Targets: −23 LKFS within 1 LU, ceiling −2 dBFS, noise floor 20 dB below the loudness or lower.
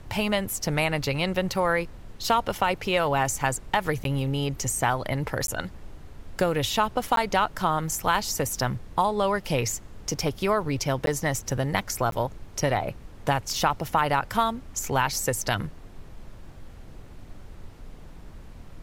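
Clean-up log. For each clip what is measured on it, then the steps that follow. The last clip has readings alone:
number of dropouts 5; longest dropout 12 ms; background noise floor −45 dBFS; target noise floor −47 dBFS; integrated loudness −26.5 LKFS; sample peak −9.0 dBFS; target loudness −23.0 LKFS
→ repair the gap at 0:04.04/0:05.47/0:07.16/0:11.06/0:12.11, 12 ms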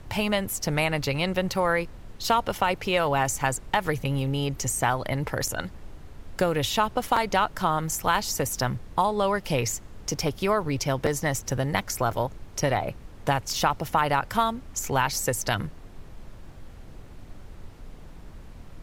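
number of dropouts 0; background noise floor −45 dBFS; target noise floor −46 dBFS
→ noise reduction from a noise print 6 dB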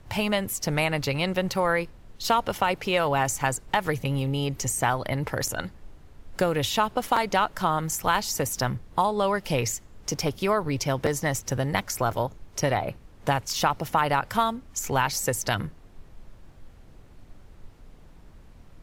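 background noise floor −51 dBFS; integrated loudness −26.5 LKFS; sample peak −9.0 dBFS; target loudness −23.0 LKFS
→ level +3.5 dB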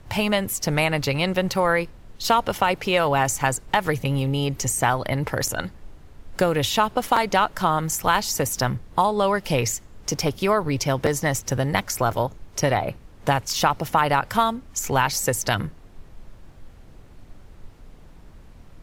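integrated loudness −23.0 LKFS; sample peak −5.5 dBFS; background noise floor −47 dBFS

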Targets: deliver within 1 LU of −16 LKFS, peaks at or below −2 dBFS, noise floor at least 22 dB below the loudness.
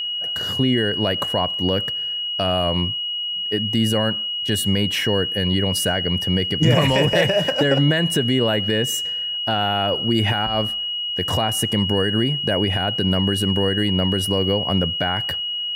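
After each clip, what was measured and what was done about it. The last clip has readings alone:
interfering tone 2,900 Hz; level of the tone −23 dBFS; integrated loudness −19.5 LKFS; sample peak −4.0 dBFS; target loudness −16.0 LKFS
→ notch filter 2,900 Hz, Q 30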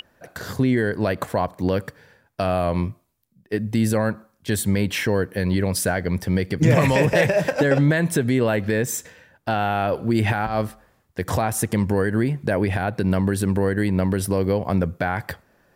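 interfering tone none found; integrated loudness −22.0 LKFS; sample peak −5.0 dBFS; target loudness −16.0 LKFS
→ level +6 dB
brickwall limiter −2 dBFS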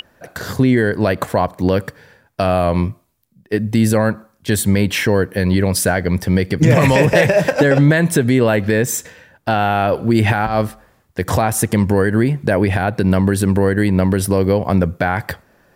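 integrated loudness −16.0 LKFS; sample peak −2.0 dBFS; background noise floor −57 dBFS

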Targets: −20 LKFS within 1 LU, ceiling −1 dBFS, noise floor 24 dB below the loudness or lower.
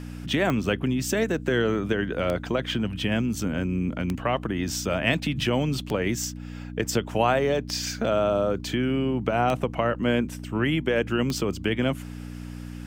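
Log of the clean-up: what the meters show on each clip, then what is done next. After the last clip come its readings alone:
number of clicks 7; mains hum 60 Hz; hum harmonics up to 300 Hz; level of the hum −35 dBFS; integrated loudness −26.0 LKFS; sample peak −8.5 dBFS; target loudness −20.0 LKFS
→ click removal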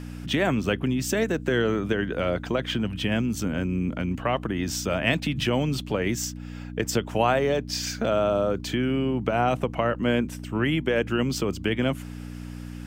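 number of clicks 0; mains hum 60 Hz; hum harmonics up to 300 Hz; level of the hum −35 dBFS
→ hum removal 60 Hz, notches 5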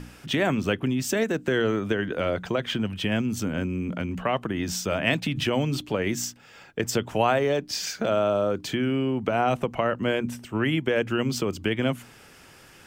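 mains hum none found; integrated loudness −26.0 LKFS; sample peak −8.5 dBFS; target loudness −20.0 LKFS
→ level +6 dB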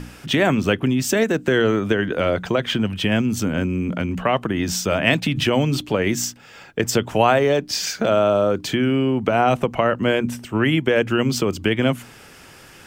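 integrated loudness −20.0 LKFS; sample peak −2.5 dBFS; background noise floor −45 dBFS

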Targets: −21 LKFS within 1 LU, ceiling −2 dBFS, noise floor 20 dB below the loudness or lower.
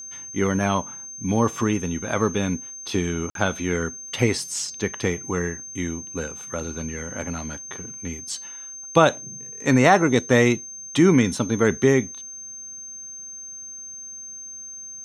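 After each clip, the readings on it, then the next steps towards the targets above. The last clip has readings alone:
number of dropouts 1; longest dropout 52 ms; interfering tone 6,300 Hz; level of the tone −35 dBFS; integrated loudness −23.0 LKFS; sample peak −2.5 dBFS; target loudness −21.0 LKFS
→ repair the gap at 0:03.30, 52 ms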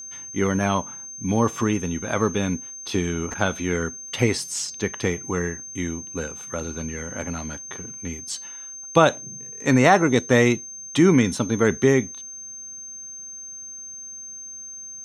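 number of dropouts 0; interfering tone 6,300 Hz; level of the tone −35 dBFS
→ notch filter 6,300 Hz, Q 30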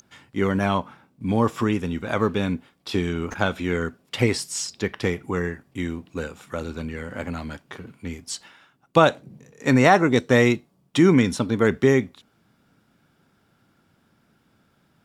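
interfering tone none found; integrated loudness −23.0 LKFS; sample peak −3.0 dBFS; target loudness −21.0 LKFS
→ level +2 dB
brickwall limiter −2 dBFS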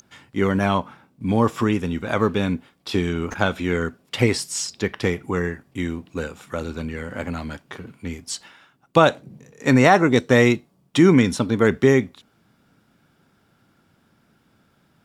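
integrated loudness −21.0 LKFS; sample peak −2.0 dBFS; background noise floor −63 dBFS

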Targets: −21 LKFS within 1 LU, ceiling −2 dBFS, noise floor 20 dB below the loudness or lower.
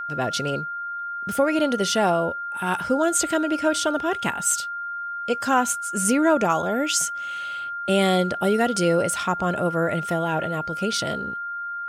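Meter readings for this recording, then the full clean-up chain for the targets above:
interfering tone 1,400 Hz; level of the tone −28 dBFS; integrated loudness −23.0 LKFS; sample peak −8.0 dBFS; target loudness −21.0 LKFS
→ notch filter 1,400 Hz, Q 30
level +2 dB

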